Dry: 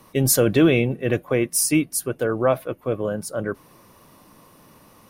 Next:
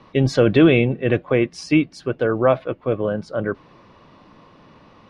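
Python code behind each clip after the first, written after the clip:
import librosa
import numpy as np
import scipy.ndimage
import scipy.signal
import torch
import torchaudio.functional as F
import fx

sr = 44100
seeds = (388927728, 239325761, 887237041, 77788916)

y = scipy.signal.sosfilt(scipy.signal.butter(4, 4200.0, 'lowpass', fs=sr, output='sos'), x)
y = F.gain(torch.from_numpy(y), 3.0).numpy()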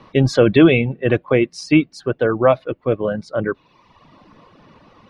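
y = fx.dereverb_blind(x, sr, rt60_s=0.96)
y = F.gain(torch.from_numpy(y), 3.0).numpy()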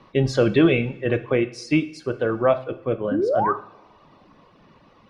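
y = fx.spec_paint(x, sr, seeds[0], shape='rise', start_s=3.11, length_s=0.42, low_hz=250.0, high_hz=1300.0, level_db=-16.0)
y = fx.rev_double_slope(y, sr, seeds[1], early_s=0.52, late_s=2.5, knee_db=-22, drr_db=9.5)
y = F.gain(torch.from_numpy(y), -5.5).numpy()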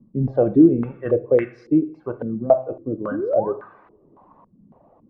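y = fx.filter_held_lowpass(x, sr, hz=3.6, low_hz=220.0, high_hz=1700.0)
y = F.gain(torch.from_numpy(y), -4.0).numpy()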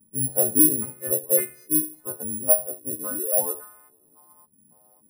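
y = fx.freq_snap(x, sr, grid_st=3)
y = (np.kron(scipy.signal.resample_poly(y, 1, 4), np.eye(4)[0]) * 4)[:len(y)]
y = F.gain(torch.from_numpy(y), -10.0).numpy()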